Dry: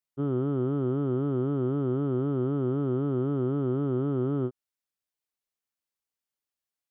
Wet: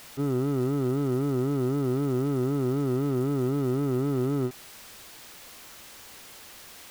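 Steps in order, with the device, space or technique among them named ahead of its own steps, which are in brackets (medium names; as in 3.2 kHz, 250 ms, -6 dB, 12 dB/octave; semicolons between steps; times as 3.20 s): early CD player with a faulty converter (jump at every zero crossing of -37 dBFS; sampling jitter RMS 0.026 ms)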